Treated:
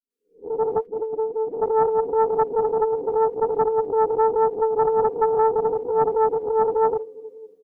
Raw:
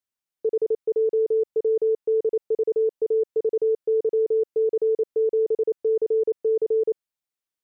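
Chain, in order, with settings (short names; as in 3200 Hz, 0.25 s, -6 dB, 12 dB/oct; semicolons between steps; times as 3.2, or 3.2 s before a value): spectral swells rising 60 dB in 0.35 s; comb 4.2 ms, depth 92%; thinning echo 0.285 s, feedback 61%, high-pass 200 Hz, level -20.5 dB; on a send at -13 dB: reverb RT60 2.7 s, pre-delay 3 ms; 0.73–1.48 on the sum: level quantiser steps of 22 dB; graphic EQ 125/250/500 Hz -3/+11/-10 dB; AGC gain up to 11 dB; 4.79–5.35 bell 700 Hz +7.5 dB 0.74 oct; dispersion highs, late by 0.104 s, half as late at 420 Hz; flange 0.83 Hz, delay 6.6 ms, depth 7.2 ms, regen +30%; Doppler distortion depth 0.53 ms; gain -3.5 dB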